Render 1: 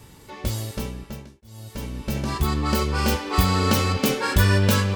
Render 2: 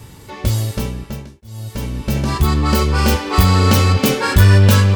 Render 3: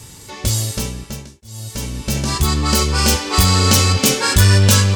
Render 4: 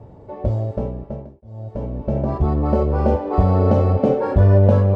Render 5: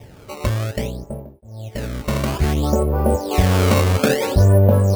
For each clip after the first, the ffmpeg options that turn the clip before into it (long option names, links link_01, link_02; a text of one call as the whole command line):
ffmpeg -i in.wav -af "equalizer=frequency=100:width=1.5:gain=5.5,acontrast=66" out.wav
ffmpeg -i in.wav -af "equalizer=frequency=7200:width_type=o:width=1.9:gain=13,volume=-2.5dB" out.wav
ffmpeg -i in.wav -af "lowpass=frequency=640:width_type=q:width=3.8,volume=-1.5dB" out.wav
ffmpeg -i in.wav -af "acrusher=samples=15:mix=1:aa=0.000001:lfo=1:lforange=24:lforate=0.59" out.wav